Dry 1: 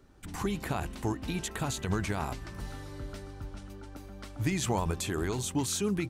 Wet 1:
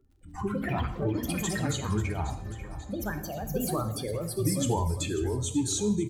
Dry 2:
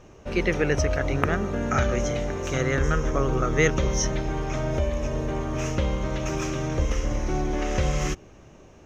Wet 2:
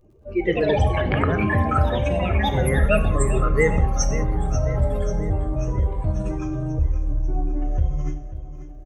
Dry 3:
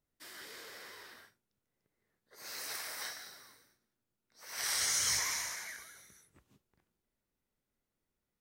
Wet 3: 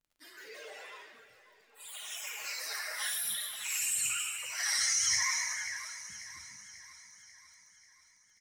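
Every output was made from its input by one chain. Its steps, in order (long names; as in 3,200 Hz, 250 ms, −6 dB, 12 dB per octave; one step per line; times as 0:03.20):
expanding power law on the bin magnitudes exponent 2
noise reduction from a noise print of the clip's start 7 dB
mains-hum notches 50/100/150/200 Hz
dynamic equaliser 1,800 Hz, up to +3 dB, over −47 dBFS, Q 2.4
surface crackle 30 per second −59 dBFS
on a send: repeating echo 540 ms, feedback 56%, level −13.5 dB
on the sum: delay with pitch and tempo change per echo 213 ms, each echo +5 semitones, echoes 2
reverb whose tail is shaped and stops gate 220 ms falling, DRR 7.5 dB
level +2 dB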